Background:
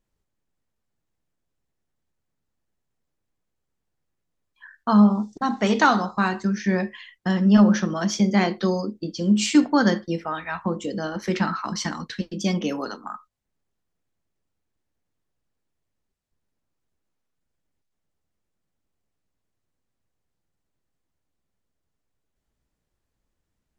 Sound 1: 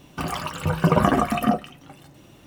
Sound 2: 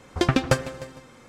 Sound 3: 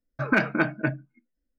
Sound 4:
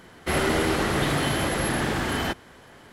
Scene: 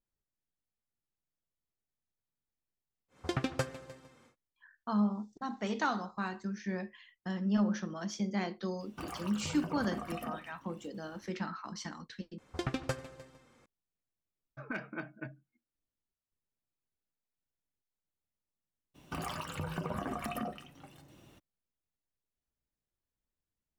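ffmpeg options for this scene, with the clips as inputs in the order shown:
ffmpeg -i bed.wav -i cue0.wav -i cue1.wav -i cue2.wav -filter_complex "[2:a]asplit=2[link_01][link_02];[1:a]asplit=2[link_03][link_04];[0:a]volume=-14.5dB[link_05];[link_01]highpass=66[link_06];[link_03]acompressor=threshold=-22dB:ratio=6:attack=3.2:release=140:knee=1:detection=peak[link_07];[link_02]asplit=2[link_08][link_09];[link_09]adelay=93.29,volume=-21dB,highshelf=frequency=4000:gain=-2.1[link_10];[link_08][link_10]amix=inputs=2:normalize=0[link_11];[3:a]bandreject=frequency=4100:width=8.2[link_12];[link_04]acompressor=threshold=-24dB:ratio=6:attack=3.2:release=140:knee=1:detection=peak[link_13];[link_05]asplit=2[link_14][link_15];[link_14]atrim=end=12.384[link_16];[link_11]atrim=end=1.28,asetpts=PTS-STARTPTS,volume=-14.5dB[link_17];[link_15]atrim=start=13.656[link_18];[link_06]atrim=end=1.28,asetpts=PTS-STARTPTS,volume=-12.5dB,afade=type=in:duration=0.1,afade=type=out:start_time=1.18:duration=0.1,adelay=3080[link_19];[link_07]atrim=end=2.46,asetpts=PTS-STARTPTS,volume=-14dB,afade=type=in:duration=0.004:curve=hsin,afade=type=out:start_time=2.456:duration=0.004:curve=hsin,adelay=8800[link_20];[link_12]atrim=end=1.58,asetpts=PTS-STARTPTS,volume=-17.5dB,afade=type=in:duration=0.004:curve=hsin,afade=type=out:start_time=1.576:duration=0.004:curve=hsin,adelay=14380[link_21];[link_13]atrim=end=2.46,asetpts=PTS-STARTPTS,volume=-9dB,afade=type=in:duration=0.02,afade=type=out:start_time=2.44:duration=0.02,adelay=18940[link_22];[link_16][link_17]acrossfade=duration=0.004:curve1=hsin:curve2=hsin[link_23];[link_23][link_18]acrossfade=duration=0.004:curve1=hsin:curve2=hsin[link_24];[link_24][link_19][link_20][link_21][link_22]amix=inputs=5:normalize=0" out.wav

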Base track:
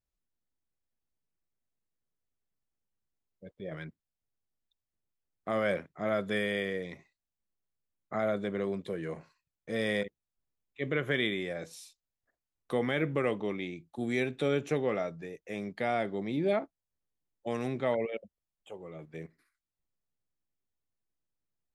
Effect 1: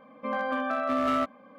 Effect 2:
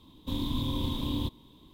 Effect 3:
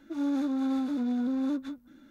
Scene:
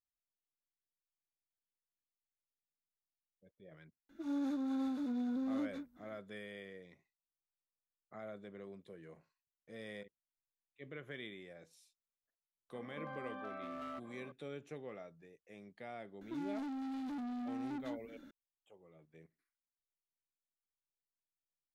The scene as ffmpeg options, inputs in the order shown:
ffmpeg -i bed.wav -i cue0.wav -i cue1.wav -i cue2.wav -filter_complex "[3:a]asplit=2[link_01][link_02];[0:a]volume=-17.5dB[link_03];[1:a]acompressor=threshold=-41dB:ratio=6:attack=3.2:release=140:knee=1:detection=peak[link_04];[link_02]asoftclip=type=tanh:threshold=-38.5dB[link_05];[link_01]atrim=end=2.1,asetpts=PTS-STARTPTS,volume=-8dB,afade=type=in:duration=0.004:curve=hsin,afade=type=out:start_time=2.096:duration=0.004:curve=hsin,adelay=180369S[link_06];[link_04]atrim=end=1.58,asetpts=PTS-STARTPTS,volume=-3.5dB,afade=type=in:duration=0.004:curve=hsin,afade=type=out:start_time=1.576:duration=0.004:curve=hsin,adelay=12740[link_07];[link_05]atrim=end=2.1,asetpts=PTS-STARTPTS,volume=-1.5dB,afade=type=in:duration=0.004:curve=hsin,afade=type=out:start_time=2.096:duration=0.004:curve=hsin,adelay=16210[link_08];[link_03][link_06][link_07][link_08]amix=inputs=4:normalize=0" out.wav

